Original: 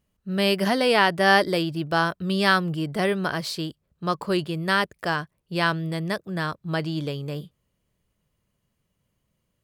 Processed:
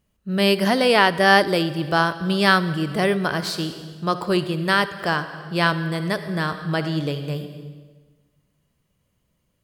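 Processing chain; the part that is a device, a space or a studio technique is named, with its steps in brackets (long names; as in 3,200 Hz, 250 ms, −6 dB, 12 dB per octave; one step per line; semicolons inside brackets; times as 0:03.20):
compressed reverb return (on a send at −6 dB: convolution reverb RT60 1.3 s, pre-delay 55 ms + downward compressor 6 to 1, threshold −27 dBFS, peak gain reduction 12.5 dB)
on the sum: level +3 dB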